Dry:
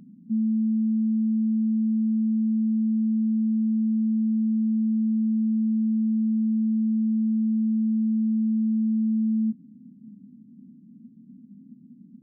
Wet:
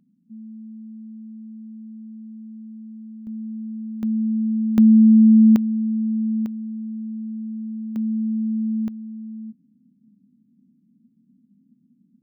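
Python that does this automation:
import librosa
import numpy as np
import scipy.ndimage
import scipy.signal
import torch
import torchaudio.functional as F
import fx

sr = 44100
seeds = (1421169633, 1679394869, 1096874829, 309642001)

y = fx.gain(x, sr, db=fx.steps((0.0, -15.0), (3.27, -8.0), (4.03, 1.5), (4.78, 12.0), (5.56, 1.0), (6.46, -7.0), (7.96, 0.0), (8.88, -11.0)))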